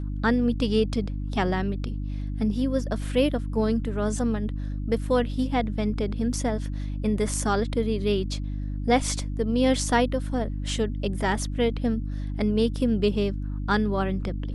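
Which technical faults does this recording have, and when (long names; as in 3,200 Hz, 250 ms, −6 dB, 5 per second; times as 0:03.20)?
mains hum 50 Hz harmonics 6 −30 dBFS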